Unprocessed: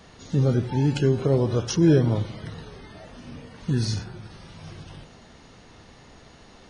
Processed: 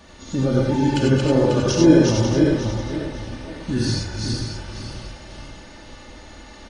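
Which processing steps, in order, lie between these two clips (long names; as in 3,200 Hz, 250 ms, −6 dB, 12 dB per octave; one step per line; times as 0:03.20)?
feedback delay that plays each chunk backwards 271 ms, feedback 54%, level −2 dB
comb filter 3.4 ms, depth 58%
reverb whose tail is shaped and stops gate 120 ms rising, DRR 0 dB
level +1 dB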